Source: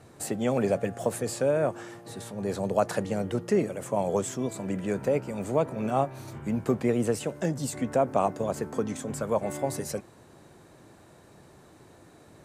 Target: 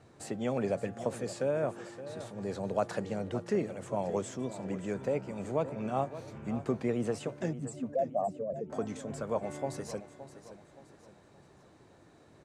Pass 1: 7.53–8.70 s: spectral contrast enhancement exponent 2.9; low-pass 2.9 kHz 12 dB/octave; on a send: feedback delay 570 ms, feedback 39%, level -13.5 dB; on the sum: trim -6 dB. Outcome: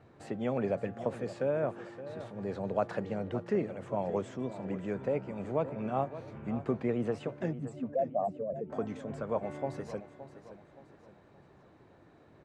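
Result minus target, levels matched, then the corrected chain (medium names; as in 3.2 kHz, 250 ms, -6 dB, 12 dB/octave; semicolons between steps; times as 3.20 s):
8 kHz band -13.5 dB
7.53–8.70 s: spectral contrast enhancement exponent 2.9; low-pass 6.9 kHz 12 dB/octave; on a send: feedback delay 570 ms, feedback 39%, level -13.5 dB; on the sum: trim -6 dB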